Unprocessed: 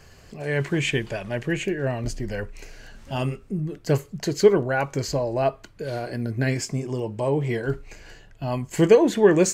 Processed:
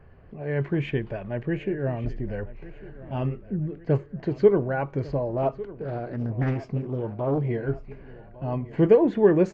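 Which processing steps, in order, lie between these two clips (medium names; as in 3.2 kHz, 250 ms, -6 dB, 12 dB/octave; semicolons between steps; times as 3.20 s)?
level-controlled noise filter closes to 2.5 kHz, open at -17.5 dBFS; tape spacing loss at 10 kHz 45 dB; feedback delay 1151 ms, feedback 52%, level -18 dB; 5.29–7.39 s: loudspeaker Doppler distortion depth 0.63 ms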